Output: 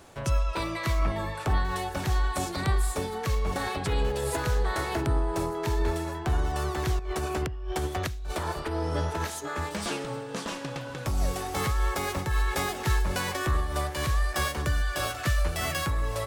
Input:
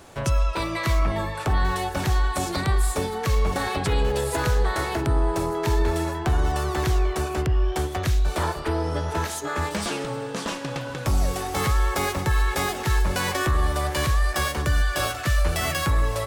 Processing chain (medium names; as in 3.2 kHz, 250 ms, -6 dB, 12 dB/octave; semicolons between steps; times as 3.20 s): 6.99–9.30 s: compressor with a negative ratio -25 dBFS, ratio -1; random flutter of the level, depth 60%; trim -2 dB